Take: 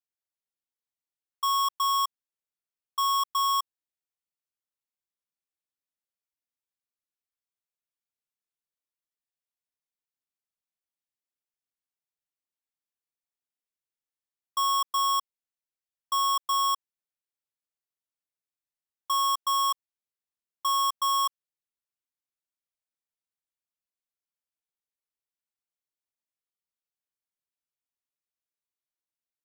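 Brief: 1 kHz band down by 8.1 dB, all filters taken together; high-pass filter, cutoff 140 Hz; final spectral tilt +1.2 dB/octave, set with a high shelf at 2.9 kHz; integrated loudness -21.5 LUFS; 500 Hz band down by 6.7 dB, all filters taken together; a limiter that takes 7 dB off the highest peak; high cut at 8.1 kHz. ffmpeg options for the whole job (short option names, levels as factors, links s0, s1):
-af "highpass=140,lowpass=8100,equalizer=f=500:t=o:g=-6,equalizer=f=1000:t=o:g=-7,highshelf=f=2900:g=-5.5,volume=8.91,alimiter=limit=0.188:level=0:latency=1"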